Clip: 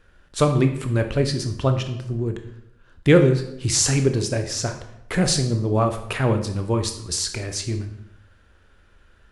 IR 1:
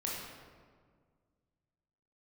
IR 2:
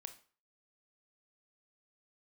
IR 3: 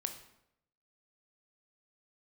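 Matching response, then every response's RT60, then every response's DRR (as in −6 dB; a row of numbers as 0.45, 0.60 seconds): 3; 1.8, 0.40, 0.80 seconds; −4.5, 8.0, 6.0 decibels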